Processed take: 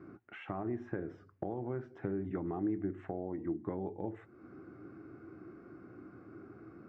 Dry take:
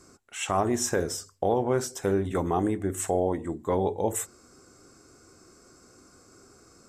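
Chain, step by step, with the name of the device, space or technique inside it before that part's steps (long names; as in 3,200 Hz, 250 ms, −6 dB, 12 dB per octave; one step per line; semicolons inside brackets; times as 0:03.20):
bass amplifier (downward compressor 4 to 1, threshold −41 dBFS, peak gain reduction 17.5 dB; loudspeaker in its box 80–2,100 Hz, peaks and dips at 120 Hz +8 dB, 190 Hz +5 dB, 320 Hz +10 dB, 500 Hz −5 dB, 1,000 Hz −5 dB)
level +1 dB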